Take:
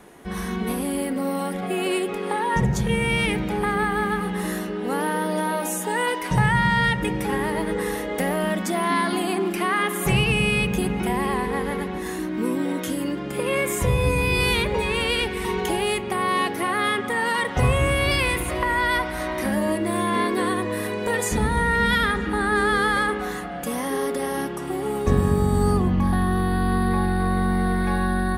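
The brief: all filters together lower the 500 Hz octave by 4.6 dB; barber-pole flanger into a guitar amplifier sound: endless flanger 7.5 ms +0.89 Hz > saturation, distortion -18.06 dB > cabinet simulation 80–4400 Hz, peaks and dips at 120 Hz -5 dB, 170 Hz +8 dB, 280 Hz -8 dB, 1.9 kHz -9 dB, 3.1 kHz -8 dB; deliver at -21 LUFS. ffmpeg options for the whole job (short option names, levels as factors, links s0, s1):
-filter_complex "[0:a]equalizer=f=500:t=o:g=-5,asplit=2[s0][s1];[s1]adelay=7.5,afreqshift=0.89[s2];[s0][s2]amix=inputs=2:normalize=1,asoftclip=threshold=0.119,highpass=80,equalizer=f=120:t=q:w=4:g=-5,equalizer=f=170:t=q:w=4:g=8,equalizer=f=280:t=q:w=4:g=-8,equalizer=f=1900:t=q:w=4:g=-9,equalizer=f=3100:t=q:w=4:g=-8,lowpass=f=4400:w=0.5412,lowpass=f=4400:w=1.3066,volume=2.66"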